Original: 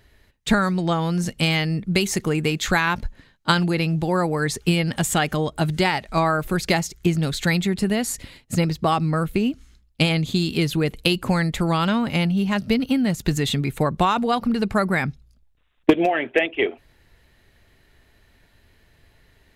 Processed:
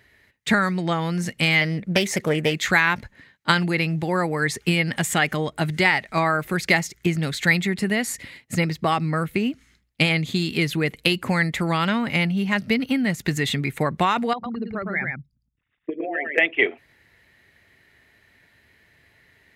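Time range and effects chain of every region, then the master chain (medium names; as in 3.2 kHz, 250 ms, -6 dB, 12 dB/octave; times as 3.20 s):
1.61–2.54 s: peaking EQ 550 Hz +10 dB 0.48 oct + loudspeaker Doppler distortion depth 0.35 ms
14.33–16.38 s: resonances exaggerated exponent 2 + compression 2:1, threshold -31 dBFS + delay 111 ms -3.5 dB
whole clip: high-pass 95 Hz 12 dB/octave; peaking EQ 2 kHz +10 dB 0.6 oct; trim -2 dB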